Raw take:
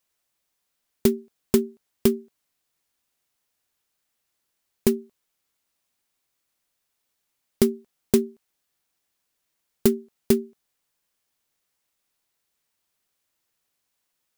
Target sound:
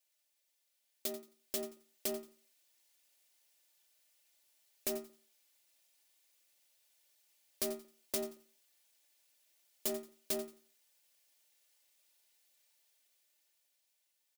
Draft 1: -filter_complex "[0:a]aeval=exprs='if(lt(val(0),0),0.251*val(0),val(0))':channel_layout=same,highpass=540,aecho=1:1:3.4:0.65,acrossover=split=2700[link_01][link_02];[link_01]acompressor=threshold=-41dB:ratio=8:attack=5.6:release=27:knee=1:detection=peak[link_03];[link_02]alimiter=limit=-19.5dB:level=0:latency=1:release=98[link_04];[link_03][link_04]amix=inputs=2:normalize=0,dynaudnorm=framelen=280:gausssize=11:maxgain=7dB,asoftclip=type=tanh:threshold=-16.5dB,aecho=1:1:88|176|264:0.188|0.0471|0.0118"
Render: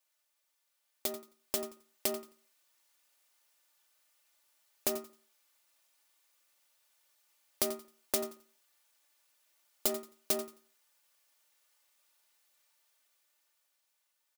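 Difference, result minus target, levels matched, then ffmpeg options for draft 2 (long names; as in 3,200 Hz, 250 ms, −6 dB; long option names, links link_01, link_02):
soft clipping: distortion −9 dB; 1,000 Hz band +4.0 dB
-filter_complex "[0:a]aeval=exprs='if(lt(val(0),0),0.251*val(0),val(0))':channel_layout=same,highpass=540,aecho=1:1:3.4:0.65,acrossover=split=2700[link_01][link_02];[link_01]acompressor=threshold=-41dB:ratio=8:attack=5.6:release=27:knee=1:detection=peak,equalizer=frequency=1200:width_type=o:width=0.93:gain=-11[link_03];[link_02]alimiter=limit=-19.5dB:level=0:latency=1:release=98[link_04];[link_03][link_04]amix=inputs=2:normalize=0,dynaudnorm=framelen=280:gausssize=11:maxgain=7dB,asoftclip=type=tanh:threshold=-28.5dB,aecho=1:1:88|176|264:0.188|0.0471|0.0118"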